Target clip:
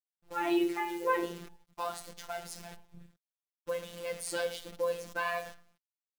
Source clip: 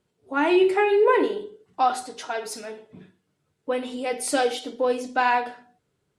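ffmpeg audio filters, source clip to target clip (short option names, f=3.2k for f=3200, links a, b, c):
-af "acrusher=bits=7:dc=4:mix=0:aa=0.000001,lowshelf=f=230:t=q:w=1.5:g=6.5,afftfilt=real='hypot(re,im)*cos(PI*b)':imag='0':win_size=1024:overlap=0.75,volume=-6.5dB"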